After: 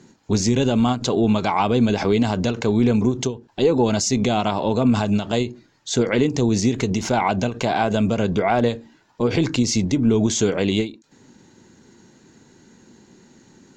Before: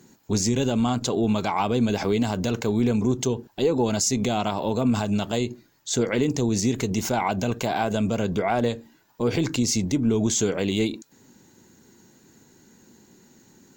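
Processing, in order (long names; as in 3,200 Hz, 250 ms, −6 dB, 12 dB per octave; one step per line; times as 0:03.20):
low-pass filter 5,800 Hz 12 dB per octave
every ending faded ahead of time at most 180 dB per second
level +4.5 dB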